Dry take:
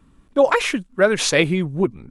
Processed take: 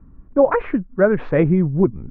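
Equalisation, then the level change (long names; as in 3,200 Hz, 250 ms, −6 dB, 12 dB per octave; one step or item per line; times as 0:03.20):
low-pass filter 1,700 Hz 24 dB per octave
tilt shelving filter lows +3.5 dB, about 630 Hz
low-shelf EQ 110 Hz +9 dB
0.0 dB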